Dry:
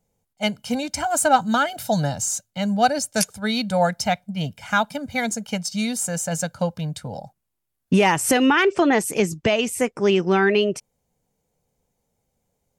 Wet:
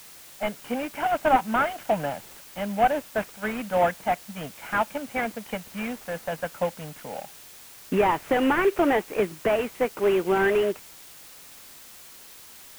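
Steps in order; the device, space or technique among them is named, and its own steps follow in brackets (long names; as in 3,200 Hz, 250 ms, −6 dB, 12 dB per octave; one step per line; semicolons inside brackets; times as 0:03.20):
army field radio (band-pass filter 320–2,900 Hz; variable-slope delta modulation 16 kbit/s; white noise bed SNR 20 dB)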